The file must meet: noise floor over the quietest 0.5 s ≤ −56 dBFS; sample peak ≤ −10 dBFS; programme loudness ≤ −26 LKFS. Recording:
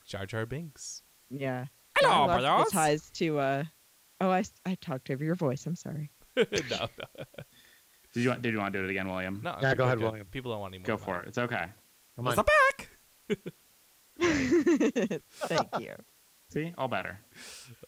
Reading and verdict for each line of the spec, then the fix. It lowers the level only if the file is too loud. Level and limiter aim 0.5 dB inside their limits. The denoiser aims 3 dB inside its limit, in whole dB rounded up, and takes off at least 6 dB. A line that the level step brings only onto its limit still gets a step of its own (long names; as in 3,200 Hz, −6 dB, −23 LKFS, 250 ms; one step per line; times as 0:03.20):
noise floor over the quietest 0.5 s −63 dBFS: in spec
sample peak −13.0 dBFS: in spec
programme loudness −30.0 LKFS: in spec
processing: no processing needed